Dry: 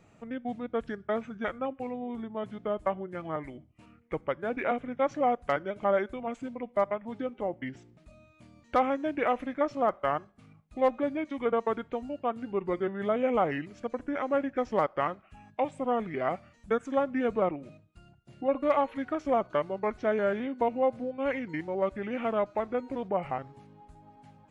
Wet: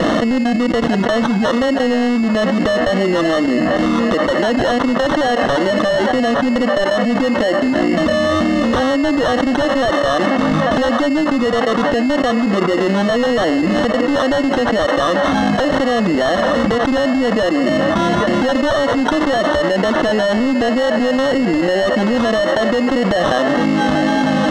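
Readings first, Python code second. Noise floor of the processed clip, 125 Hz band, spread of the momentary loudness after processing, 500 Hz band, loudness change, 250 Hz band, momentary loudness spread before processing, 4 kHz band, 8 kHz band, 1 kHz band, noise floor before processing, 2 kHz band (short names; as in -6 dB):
-17 dBFS, +20.0 dB, 1 LU, +14.0 dB, +15.5 dB, +20.0 dB, 9 LU, +28.5 dB, n/a, +12.5 dB, -61 dBFS, +20.0 dB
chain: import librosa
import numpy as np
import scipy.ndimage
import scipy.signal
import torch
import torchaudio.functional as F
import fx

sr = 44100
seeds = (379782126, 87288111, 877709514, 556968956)

p1 = fx.recorder_agc(x, sr, target_db=-21.0, rise_db_per_s=72.0, max_gain_db=30)
p2 = scipy.signal.sosfilt(scipy.signal.butter(2, 200.0, 'highpass', fs=sr, output='sos'), p1)
p3 = fx.peak_eq(p2, sr, hz=400.0, db=7.5, octaves=0.7)
p4 = fx.fixed_phaser(p3, sr, hz=610.0, stages=8)
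p5 = fx.sample_hold(p4, sr, seeds[0], rate_hz=2400.0, jitter_pct=0)
p6 = fx.fold_sine(p5, sr, drive_db=17, ceiling_db=-5.0)
p7 = fx.wow_flutter(p6, sr, seeds[1], rate_hz=2.1, depth_cents=24.0)
p8 = fx.air_absorb(p7, sr, metres=130.0)
p9 = p8 + fx.echo_banded(p8, sr, ms=842, feedback_pct=73, hz=1100.0, wet_db=-12.5, dry=0)
p10 = fx.env_flatten(p9, sr, amount_pct=100)
y = p10 * 10.0 ** (-8.0 / 20.0)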